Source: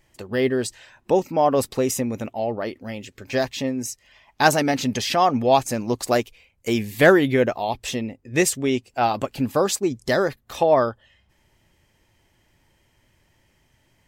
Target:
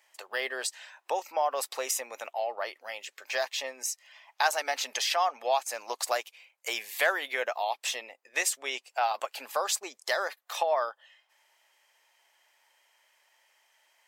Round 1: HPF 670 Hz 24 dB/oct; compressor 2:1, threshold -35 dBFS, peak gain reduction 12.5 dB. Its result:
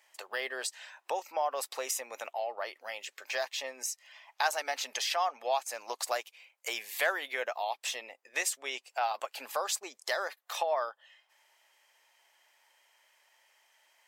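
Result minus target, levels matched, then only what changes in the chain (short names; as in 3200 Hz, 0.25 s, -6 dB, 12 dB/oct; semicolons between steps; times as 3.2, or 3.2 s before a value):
compressor: peak gain reduction +3.5 dB
change: compressor 2:1, threshold -28 dBFS, peak gain reduction 9 dB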